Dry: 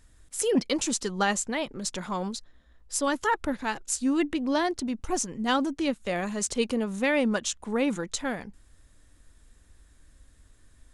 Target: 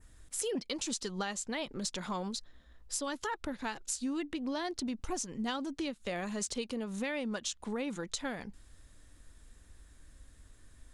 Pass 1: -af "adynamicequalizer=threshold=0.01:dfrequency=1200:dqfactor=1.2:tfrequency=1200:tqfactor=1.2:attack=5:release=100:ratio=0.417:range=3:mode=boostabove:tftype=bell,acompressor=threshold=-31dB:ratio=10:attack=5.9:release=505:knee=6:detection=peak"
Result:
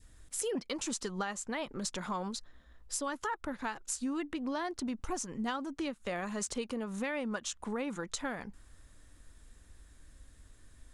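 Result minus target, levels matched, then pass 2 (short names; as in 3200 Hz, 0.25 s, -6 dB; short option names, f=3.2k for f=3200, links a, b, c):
4000 Hz band -3.0 dB
-af "adynamicequalizer=threshold=0.01:dfrequency=4100:dqfactor=1.2:tfrequency=4100:tqfactor=1.2:attack=5:release=100:ratio=0.417:range=3:mode=boostabove:tftype=bell,acompressor=threshold=-31dB:ratio=10:attack=5.9:release=505:knee=6:detection=peak"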